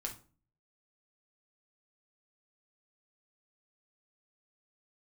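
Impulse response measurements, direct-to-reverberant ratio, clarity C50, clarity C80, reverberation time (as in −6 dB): 0.5 dB, 11.0 dB, 18.0 dB, 0.40 s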